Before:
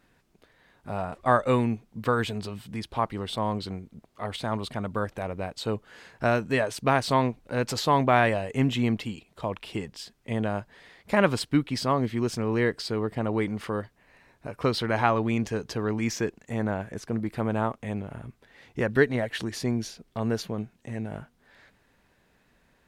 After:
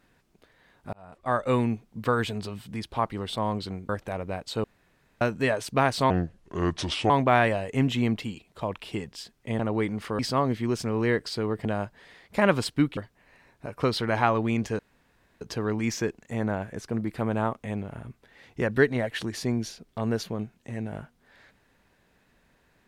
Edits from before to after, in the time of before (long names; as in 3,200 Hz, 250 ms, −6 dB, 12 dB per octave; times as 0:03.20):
0:00.93–0:01.61: fade in
0:03.89–0:04.99: remove
0:05.74–0:06.31: fill with room tone
0:07.20–0:07.91: play speed 71%
0:10.40–0:11.72: swap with 0:13.18–0:13.78
0:15.60: splice in room tone 0.62 s